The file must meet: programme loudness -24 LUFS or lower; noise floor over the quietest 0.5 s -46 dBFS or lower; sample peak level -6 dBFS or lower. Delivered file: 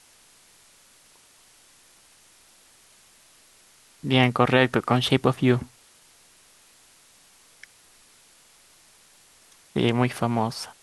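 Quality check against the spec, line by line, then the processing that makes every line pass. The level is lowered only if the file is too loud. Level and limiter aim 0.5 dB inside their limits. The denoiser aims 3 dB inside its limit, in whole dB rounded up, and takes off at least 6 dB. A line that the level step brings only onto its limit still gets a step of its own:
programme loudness -22.5 LUFS: fail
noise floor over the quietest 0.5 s -56 dBFS: OK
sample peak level -4.5 dBFS: fail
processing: gain -2 dB

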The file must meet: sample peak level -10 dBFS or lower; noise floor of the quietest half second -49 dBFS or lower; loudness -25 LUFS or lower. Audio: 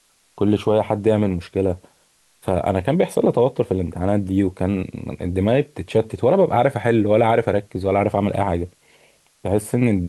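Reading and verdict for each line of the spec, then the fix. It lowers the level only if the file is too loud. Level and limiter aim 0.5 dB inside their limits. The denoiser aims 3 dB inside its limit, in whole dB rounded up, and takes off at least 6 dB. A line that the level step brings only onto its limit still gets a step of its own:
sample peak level -5.5 dBFS: fail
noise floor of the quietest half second -60 dBFS: OK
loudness -20.0 LUFS: fail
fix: gain -5.5 dB

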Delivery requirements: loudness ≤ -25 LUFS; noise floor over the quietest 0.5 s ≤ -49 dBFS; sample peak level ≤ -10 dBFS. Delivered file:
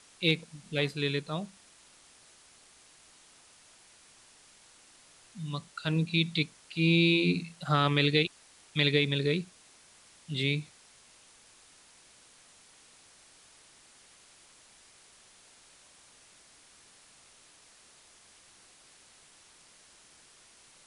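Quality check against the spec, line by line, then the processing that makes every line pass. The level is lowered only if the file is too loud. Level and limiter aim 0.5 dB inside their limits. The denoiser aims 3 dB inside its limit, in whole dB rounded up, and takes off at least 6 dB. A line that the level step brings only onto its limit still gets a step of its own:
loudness -29.0 LUFS: OK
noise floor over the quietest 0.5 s -59 dBFS: OK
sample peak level -11.0 dBFS: OK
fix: none

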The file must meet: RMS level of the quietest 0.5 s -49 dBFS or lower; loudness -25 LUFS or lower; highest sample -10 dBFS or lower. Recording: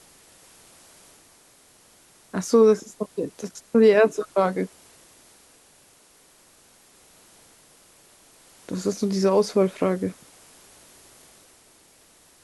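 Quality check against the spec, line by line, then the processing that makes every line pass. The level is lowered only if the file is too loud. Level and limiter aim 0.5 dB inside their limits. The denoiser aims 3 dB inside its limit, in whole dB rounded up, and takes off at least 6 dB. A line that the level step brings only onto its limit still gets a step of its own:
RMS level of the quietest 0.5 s -56 dBFS: OK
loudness -22.0 LUFS: fail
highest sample -7.0 dBFS: fail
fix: gain -3.5 dB

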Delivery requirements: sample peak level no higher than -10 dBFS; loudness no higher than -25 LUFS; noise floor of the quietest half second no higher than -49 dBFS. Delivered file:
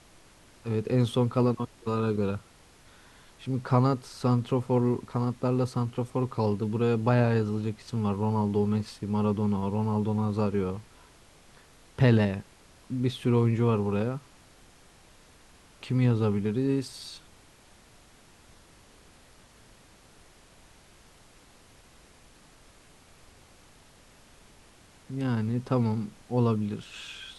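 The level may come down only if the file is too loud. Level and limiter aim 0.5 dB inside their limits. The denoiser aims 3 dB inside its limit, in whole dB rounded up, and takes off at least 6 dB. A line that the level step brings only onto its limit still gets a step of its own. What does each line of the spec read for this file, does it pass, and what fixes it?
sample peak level -8.5 dBFS: fail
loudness -28.0 LUFS: OK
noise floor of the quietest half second -56 dBFS: OK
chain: limiter -10.5 dBFS

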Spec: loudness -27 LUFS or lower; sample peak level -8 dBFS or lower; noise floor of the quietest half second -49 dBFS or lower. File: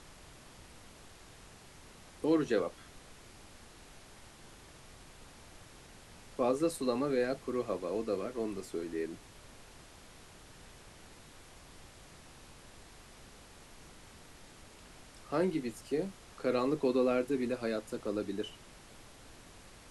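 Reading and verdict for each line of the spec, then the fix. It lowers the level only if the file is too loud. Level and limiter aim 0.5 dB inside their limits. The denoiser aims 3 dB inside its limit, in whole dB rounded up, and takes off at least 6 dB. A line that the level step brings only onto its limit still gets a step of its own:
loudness -34.0 LUFS: OK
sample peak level -18.5 dBFS: OK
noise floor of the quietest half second -55 dBFS: OK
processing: none

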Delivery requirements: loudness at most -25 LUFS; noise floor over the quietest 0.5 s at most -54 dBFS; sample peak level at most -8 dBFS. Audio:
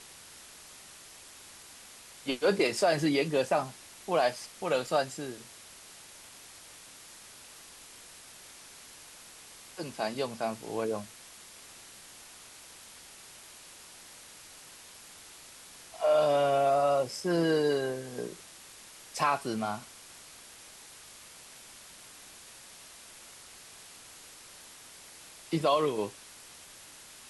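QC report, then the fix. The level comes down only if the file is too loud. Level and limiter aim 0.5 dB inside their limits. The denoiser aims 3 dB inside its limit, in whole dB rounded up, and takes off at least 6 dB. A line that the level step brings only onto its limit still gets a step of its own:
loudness -29.5 LUFS: OK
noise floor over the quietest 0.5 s -51 dBFS: fail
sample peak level -14.5 dBFS: OK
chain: denoiser 6 dB, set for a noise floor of -51 dBFS

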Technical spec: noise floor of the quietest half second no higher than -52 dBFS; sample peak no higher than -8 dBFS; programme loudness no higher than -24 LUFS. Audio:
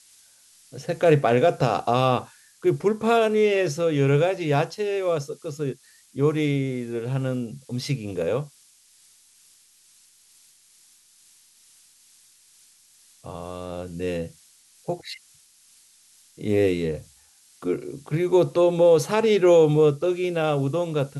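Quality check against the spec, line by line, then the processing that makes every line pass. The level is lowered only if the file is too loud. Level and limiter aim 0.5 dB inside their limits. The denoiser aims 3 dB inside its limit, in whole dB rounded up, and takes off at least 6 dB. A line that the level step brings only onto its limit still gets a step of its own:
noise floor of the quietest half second -57 dBFS: OK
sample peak -6.0 dBFS: fail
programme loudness -23.0 LUFS: fail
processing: gain -1.5 dB; limiter -8.5 dBFS

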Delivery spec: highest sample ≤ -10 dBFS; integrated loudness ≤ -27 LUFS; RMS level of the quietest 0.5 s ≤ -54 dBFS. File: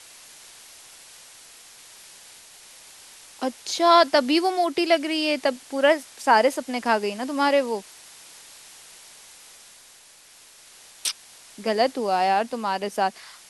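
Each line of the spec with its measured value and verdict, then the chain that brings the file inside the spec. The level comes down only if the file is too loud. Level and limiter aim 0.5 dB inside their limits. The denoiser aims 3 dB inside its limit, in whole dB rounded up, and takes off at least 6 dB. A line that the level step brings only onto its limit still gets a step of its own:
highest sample -4.5 dBFS: fail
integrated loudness -22.5 LUFS: fail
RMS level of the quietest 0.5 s -51 dBFS: fail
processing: gain -5 dB; limiter -10.5 dBFS

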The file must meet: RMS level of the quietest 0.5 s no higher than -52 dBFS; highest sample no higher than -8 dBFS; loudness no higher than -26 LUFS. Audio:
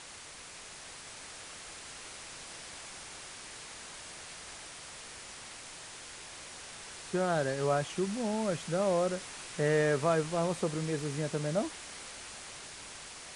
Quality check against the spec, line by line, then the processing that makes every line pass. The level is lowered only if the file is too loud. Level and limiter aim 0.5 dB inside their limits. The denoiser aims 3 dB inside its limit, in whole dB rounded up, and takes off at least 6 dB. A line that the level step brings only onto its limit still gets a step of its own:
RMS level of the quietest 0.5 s -48 dBFS: fail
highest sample -16.0 dBFS: OK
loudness -35.5 LUFS: OK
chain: denoiser 7 dB, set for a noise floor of -48 dBFS

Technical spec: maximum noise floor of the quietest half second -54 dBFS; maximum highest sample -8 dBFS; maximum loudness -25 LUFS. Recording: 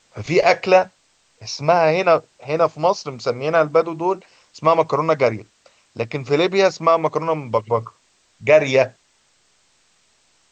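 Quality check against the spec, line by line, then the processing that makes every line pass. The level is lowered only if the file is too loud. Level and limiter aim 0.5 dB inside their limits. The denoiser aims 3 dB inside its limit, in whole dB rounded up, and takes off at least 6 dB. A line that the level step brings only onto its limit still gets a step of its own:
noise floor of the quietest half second -61 dBFS: OK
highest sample -2.5 dBFS: fail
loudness -18.5 LUFS: fail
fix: gain -7 dB

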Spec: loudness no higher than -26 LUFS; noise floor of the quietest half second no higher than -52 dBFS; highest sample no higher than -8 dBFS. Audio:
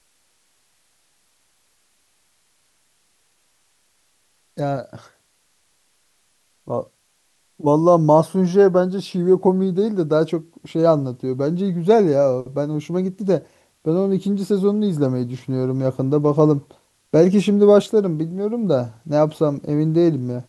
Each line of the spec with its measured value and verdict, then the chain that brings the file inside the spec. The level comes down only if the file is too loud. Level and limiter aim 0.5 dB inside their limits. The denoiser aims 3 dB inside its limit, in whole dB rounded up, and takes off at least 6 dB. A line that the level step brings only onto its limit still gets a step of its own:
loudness -19.0 LUFS: fail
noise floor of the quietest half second -64 dBFS: OK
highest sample -2.5 dBFS: fail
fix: gain -7.5 dB

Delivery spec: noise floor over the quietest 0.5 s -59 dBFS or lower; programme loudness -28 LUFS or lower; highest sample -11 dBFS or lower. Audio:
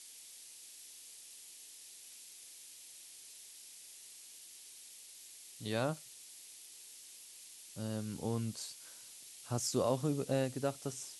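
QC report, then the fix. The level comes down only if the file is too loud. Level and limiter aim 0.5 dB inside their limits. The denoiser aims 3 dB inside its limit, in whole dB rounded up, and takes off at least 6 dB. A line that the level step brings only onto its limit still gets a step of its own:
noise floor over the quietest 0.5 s -54 dBFS: fail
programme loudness -41.5 LUFS: OK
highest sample -19.5 dBFS: OK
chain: denoiser 8 dB, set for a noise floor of -54 dBFS

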